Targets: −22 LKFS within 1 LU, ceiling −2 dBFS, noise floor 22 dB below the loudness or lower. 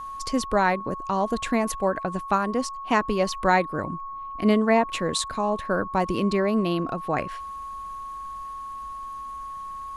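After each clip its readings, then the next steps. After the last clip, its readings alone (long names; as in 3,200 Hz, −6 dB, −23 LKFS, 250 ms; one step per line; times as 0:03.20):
interfering tone 1,100 Hz; level of the tone −33 dBFS; integrated loudness −26.0 LKFS; sample peak −7.5 dBFS; target loudness −22.0 LKFS
→ notch filter 1,100 Hz, Q 30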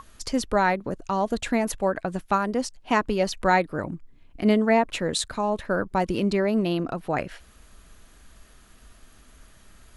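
interfering tone none found; integrated loudness −25.0 LKFS; sample peak −7.5 dBFS; target loudness −22.0 LKFS
→ level +3 dB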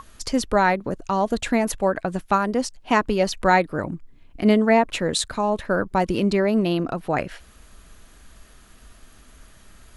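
integrated loudness −22.0 LKFS; sample peak −4.5 dBFS; background noise floor −51 dBFS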